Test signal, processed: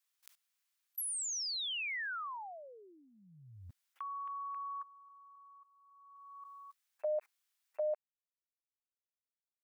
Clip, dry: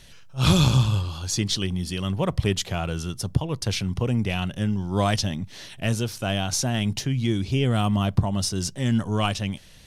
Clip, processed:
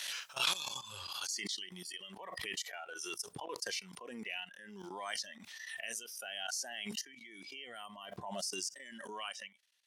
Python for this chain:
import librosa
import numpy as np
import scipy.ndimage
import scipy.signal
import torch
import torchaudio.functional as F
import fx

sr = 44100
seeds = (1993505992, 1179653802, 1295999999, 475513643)

y = fx.noise_reduce_blind(x, sr, reduce_db=18)
y = fx.level_steps(y, sr, step_db=17)
y = scipy.signal.sosfilt(scipy.signal.butter(2, 1200.0, 'highpass', fs=sr, output='sos'), y)
y = fx.pre_swell(y, sr, db_per_s=27.0)
y = F.gain(torch.from_numpy(y), -4.0).numpy()